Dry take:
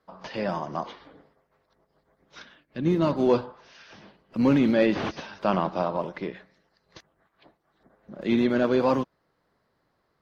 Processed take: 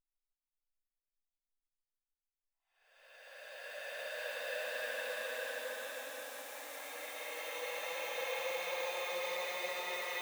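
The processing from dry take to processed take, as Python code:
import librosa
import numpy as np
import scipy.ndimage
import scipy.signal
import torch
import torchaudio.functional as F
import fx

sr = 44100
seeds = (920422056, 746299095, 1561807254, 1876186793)

y = fx.delta_hold(x, sr, step_db=-43.0)
y = scipy.signal.sosfilt(scipy.signal.ellip(4, 1.0, 40, 540.0, 'highpass', fs=sr, output='sos'), y)
y = fx.paulstretch(y, sr, seeds[0], factor=35.0, window_s=0.1, from_s=2.64)
y = y * librosa.db_to_amplitude(2.5)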